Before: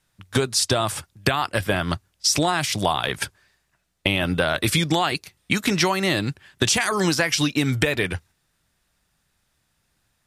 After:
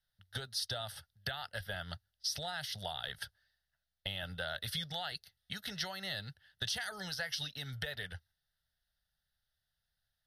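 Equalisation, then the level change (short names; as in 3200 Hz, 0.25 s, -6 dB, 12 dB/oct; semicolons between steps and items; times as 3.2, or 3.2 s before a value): pre-emphasis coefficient 0.97; RIAA curve playback; fixed phaser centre 1600 Hz, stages 8; 0.0 dB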